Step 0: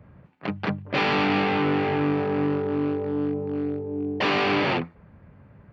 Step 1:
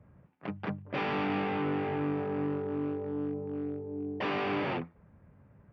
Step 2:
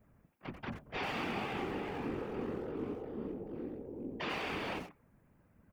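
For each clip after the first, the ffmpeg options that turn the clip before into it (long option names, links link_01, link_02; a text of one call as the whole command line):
ffmpeg -i in.wav -af "highshelf=frequency=3600:gain=-12,bandreject=frequency=4200:width=13,volume=-8dB" out.wav
ffmpeg -i in.wav -filter_complex "[0:a]asplit=2[link_01][link_02];[link_02]adelay=90,highpass=300,lowpass=3400,asoftclip=type=hard:threshold=-29.5dB,volume=-8dB[link_03];[link_01][link_03]amix=inputs=2:normalize=0,crystalizer=i=4:c=0,afftfilt=real='hypot(re,im)*cos(2*PI*random(0))':imag='hypot(re,im)*sin(2*PI*random(1))':win_size=512:overlap=0.75,volume=-2dB" out.wav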